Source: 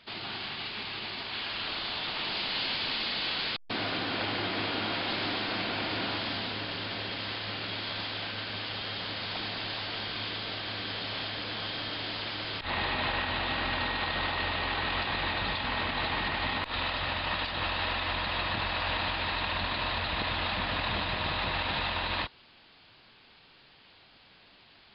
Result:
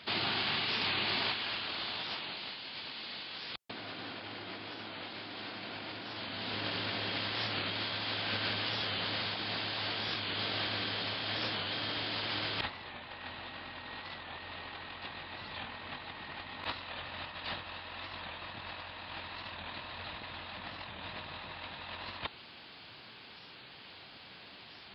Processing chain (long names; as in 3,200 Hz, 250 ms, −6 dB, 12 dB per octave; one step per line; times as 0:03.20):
high-pass filter 75 Hz
compressor whose output falls as the input rises −38 dBFS, ratio −0.5
wow of a warped record 45 rpm, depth 100 cents